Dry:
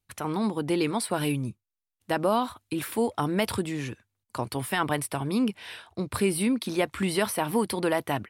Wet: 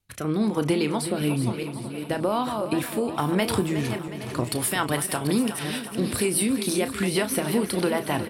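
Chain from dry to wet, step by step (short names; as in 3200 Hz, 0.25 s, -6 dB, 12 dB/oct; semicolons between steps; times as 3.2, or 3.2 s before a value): regenerating reverse delay 0.408 s, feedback 40%, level -12.5 dB; 4.44–6.99 tone controls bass -3 dB, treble +7 dB; compressor, threshold -26 dBFS, peak gain reduction 7.5 dB; rotary speaker horn 1.1 Hz, later 6.3 Hz, at 3.64; doubler 33 ms -11 dB; feedback echo 0.365 s, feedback 58%, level -11.5 dB; gain +7.5 dB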